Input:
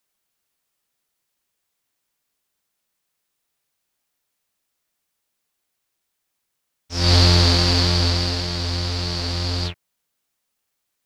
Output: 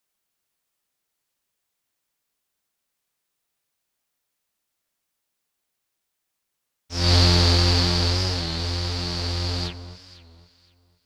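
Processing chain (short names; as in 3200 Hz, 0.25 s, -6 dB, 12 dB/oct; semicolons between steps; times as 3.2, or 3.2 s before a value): echo with dull and thin repeats by turns 0.254 s, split 1300 Hz, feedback 50%, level -11 dB; record warp 33 1/3 rpm, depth 100 cents; gain -2.5 dB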